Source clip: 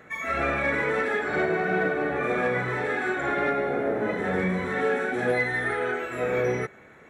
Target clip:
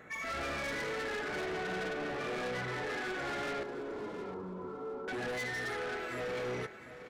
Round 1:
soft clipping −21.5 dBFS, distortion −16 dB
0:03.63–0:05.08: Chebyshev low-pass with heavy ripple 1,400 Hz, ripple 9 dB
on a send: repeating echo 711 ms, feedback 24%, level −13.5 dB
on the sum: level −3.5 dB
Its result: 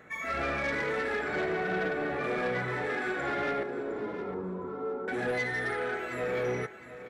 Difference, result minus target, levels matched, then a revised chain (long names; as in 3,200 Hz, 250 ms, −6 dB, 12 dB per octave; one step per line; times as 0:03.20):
soft clipping: distortion −9 dB
soft clipping −31.5 dBFS, distortion −7 dB
0:03.63–0:05.08: Chebyshev low-pass with heavy ripple 1,400 Hz, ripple 9 dB
on a send: repeating echo 711 ms, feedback 24%, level −13.5 dB
on the sum: level −3.5 dB